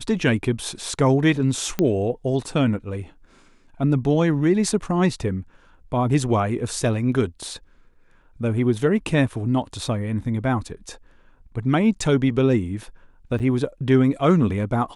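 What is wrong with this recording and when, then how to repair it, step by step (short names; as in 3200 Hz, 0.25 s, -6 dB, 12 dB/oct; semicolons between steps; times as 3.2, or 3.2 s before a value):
1.79 pop -9 dBFS
13.39–13.4 gap 8.1 ms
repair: de-click; interpolate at 13.39, 8.1 ms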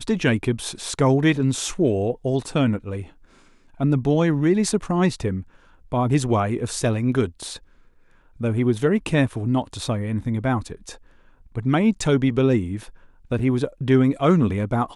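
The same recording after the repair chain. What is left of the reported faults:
none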